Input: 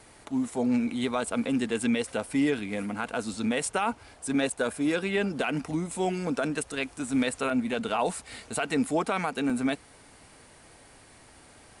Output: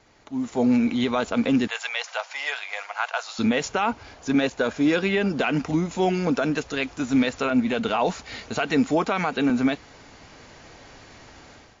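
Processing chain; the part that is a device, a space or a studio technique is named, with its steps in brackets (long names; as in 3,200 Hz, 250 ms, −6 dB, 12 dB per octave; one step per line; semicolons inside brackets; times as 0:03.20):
0:01.67–0:03.39: Butterworth high-pass 670 Hz 36 dB per octave
low-bitrate web radio (automatic gain control gain up to 12 dB; brickwall limiter −7.5 dBFS, peak gain reduction 4 dB; level −4 dB; MP3 40 kbit/s 16,000 Hz)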